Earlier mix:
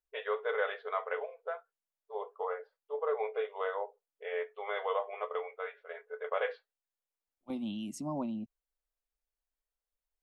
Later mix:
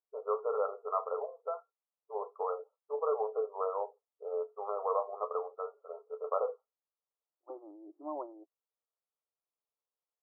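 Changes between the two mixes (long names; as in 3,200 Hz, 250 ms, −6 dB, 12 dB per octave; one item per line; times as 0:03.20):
first voice: remove high-frequency loss of the air 380 metres
master: add linear-phase brick-wall band-pass 300–1,400 Hz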